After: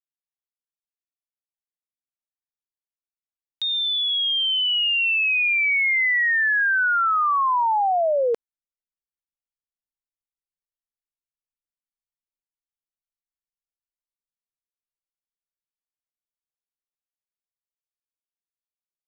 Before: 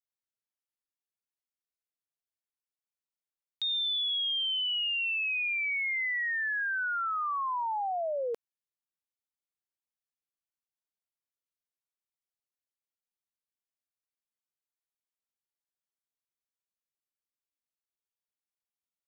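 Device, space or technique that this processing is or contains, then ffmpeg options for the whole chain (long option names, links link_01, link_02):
voice memo with heavy noise removal: -af "anlmdn=0.1,dynaudnorm=framelen=390:gausssize=21:maxgain=11.5dB"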